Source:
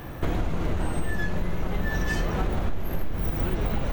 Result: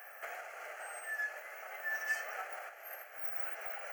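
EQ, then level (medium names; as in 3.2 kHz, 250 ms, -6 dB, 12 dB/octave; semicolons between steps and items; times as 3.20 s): high-pass 760 Hz 24 dB/octave; static phaser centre 1 kHz, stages 6; -3.0 dB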